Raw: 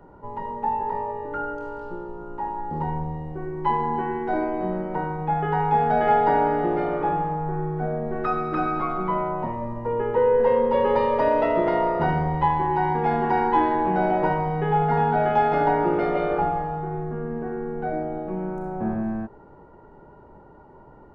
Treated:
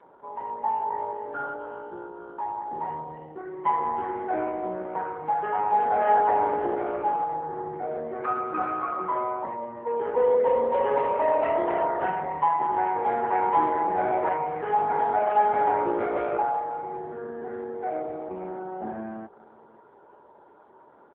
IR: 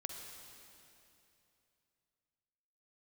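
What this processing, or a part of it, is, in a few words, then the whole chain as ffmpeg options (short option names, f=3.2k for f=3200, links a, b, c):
satellite phone: -af "highpass=380,lowpass=3.1k,aecho=1:1:545:0.0668" -ar 8000 -c:a libopencore_amrnb -b:a 5900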